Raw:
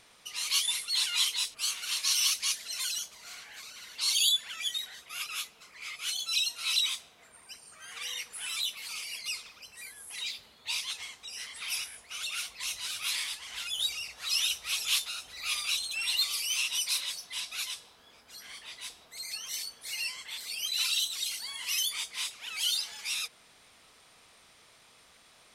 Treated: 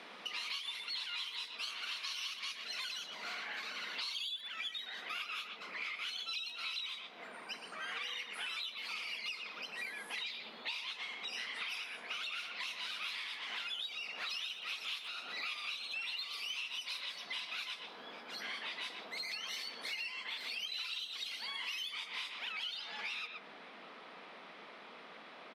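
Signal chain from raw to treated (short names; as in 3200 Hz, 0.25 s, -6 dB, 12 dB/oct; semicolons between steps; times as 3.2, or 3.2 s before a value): high shelf 4900 Hz +8.5 dB, from 22.52 s -3 dB; steep high-pass 180 Hz 48 dB/oct; air absorption 360 m; speakerphone echo 0.12 s, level -8 dB; compressor 12:1, threshold -50 dBFS, peak gain reduction 22 dB; gain +11.5 dB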